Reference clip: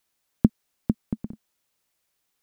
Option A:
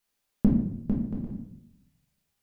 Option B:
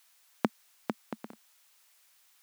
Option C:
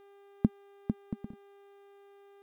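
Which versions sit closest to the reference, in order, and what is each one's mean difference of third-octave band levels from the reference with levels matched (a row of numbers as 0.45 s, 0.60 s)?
C, A, B; 2.0 dB, 5.0 dB, 11.5 dB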